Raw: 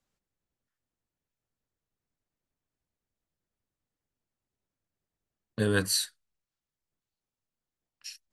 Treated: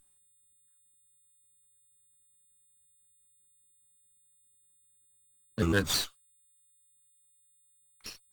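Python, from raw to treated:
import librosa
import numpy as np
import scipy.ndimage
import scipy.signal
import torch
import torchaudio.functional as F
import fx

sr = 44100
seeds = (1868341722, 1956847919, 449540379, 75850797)

y = fx.pitch_trill(x, sr, semitones=-4.0, every_ms=106)
y = y + 10.0 ** (-60.0 / 20.0) * np.sin(2.0 * np.pi * 8100.0 * np.arange(len(y)) / sr)
y = fx.running_max(y, sr, window=3)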